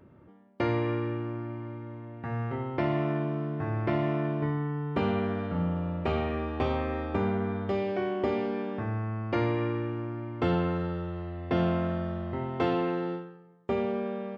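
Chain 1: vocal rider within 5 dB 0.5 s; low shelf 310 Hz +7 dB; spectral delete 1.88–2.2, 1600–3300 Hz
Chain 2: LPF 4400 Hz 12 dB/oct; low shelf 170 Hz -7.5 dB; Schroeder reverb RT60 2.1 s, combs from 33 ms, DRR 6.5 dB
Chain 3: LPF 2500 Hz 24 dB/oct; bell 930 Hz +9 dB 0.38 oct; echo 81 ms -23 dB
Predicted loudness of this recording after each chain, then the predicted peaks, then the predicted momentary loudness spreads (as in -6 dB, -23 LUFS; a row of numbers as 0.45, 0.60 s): -27.0, -31.5, -30.0 LUFS; -12.5, -15.0, -12.0 dBFS; 4, 8, 8 LU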